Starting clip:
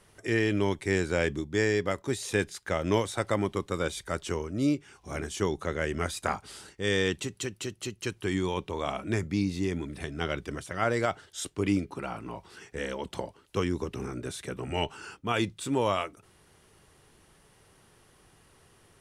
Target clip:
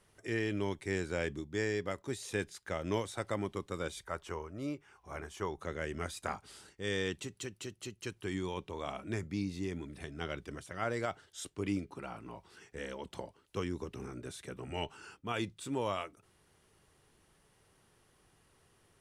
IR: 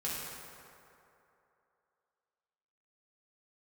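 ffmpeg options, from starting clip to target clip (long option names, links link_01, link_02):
-filter_complex "[0:a]asettb=1/sr,asplit=3[link_01][link_02][link_03];[link_01]atrim=end=4.054[link_04];[link_02]atrim=start=4.05:end=5.61,asetpts=PTS-STARTPTS,afade=type=in:duration=0.004:curve=qsin,afade=type=out:start_time=1.556:duration=0.004:curve=qsin,equalizer=frequency=125:width_type=o:width=1:gain=-3,equalizer=frequency=250:width_type=o:width=1:gain=-6,equalizer=frequency=1000:width_type=o:width=1:gain=6,equalizer=frequency=4000:width_type=o:width=1:gain=-5,equalizer=frequency=8000:width_type=o:width=1:gain=-6[link_05];[link_03]atrim=start=5.606[link_06];[link_04][link_05]acrossfade=duration=0.004:curve1=hsin:curve2=qsin[link_07];[link_07][link_06]acrossfade=duration=0.004:curve1=qsin:curve2=hsin,volume=-8dB"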